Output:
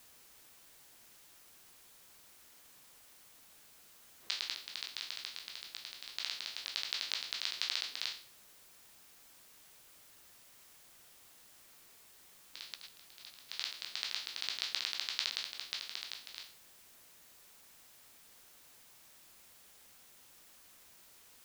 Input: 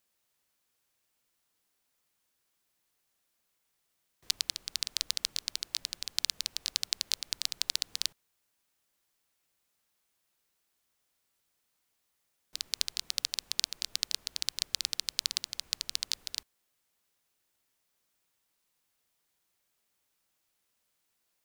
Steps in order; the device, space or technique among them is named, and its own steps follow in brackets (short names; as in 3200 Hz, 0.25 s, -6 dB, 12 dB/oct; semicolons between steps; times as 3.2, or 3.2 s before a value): spectral trails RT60 0.43 s; 12.75–13.49 gate -28 dBFS, range -14 dB; shortwave radio (BPF 300–3000 Hz; tremolo 0.27 Hz, depth 56%; white noise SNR 14 dB)